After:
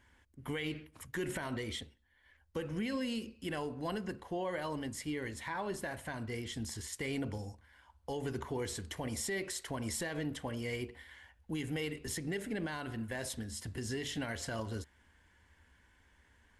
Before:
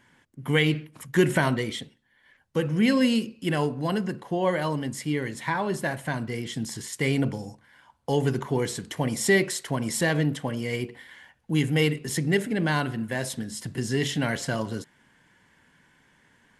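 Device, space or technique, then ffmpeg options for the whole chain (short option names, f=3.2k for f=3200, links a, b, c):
car stereo with a boomy subwoofer: -af "lowshelf=f=100:t=q:w=3:g=11.5,alimiter=limit=-21.5dB:level=0:latency=1:release=100,volume=-7dB"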